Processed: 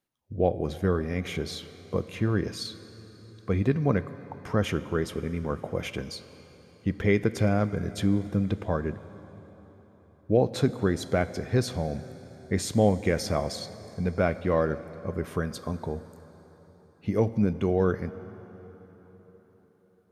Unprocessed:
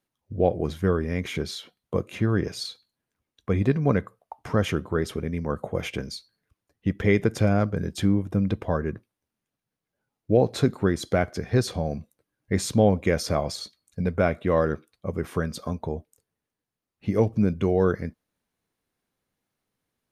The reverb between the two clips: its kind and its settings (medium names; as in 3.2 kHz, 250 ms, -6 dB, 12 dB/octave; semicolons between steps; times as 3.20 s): plate-style reverb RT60 4.6 s, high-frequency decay 0.8×, DRR 13.5 dB; trim -2.5 dB